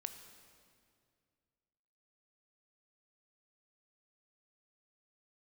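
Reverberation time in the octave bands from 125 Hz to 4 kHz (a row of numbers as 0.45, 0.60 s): 2.7, 2.5, 2.4, 2.1, 2.0, 1.8 s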